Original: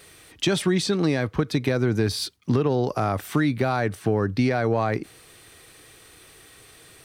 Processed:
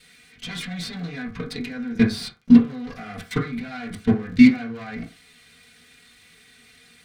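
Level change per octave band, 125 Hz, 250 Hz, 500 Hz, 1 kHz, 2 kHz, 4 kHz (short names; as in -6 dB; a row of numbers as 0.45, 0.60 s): -6.0, +6.0, -10.0, -10.0, -0.5, -4.0 dB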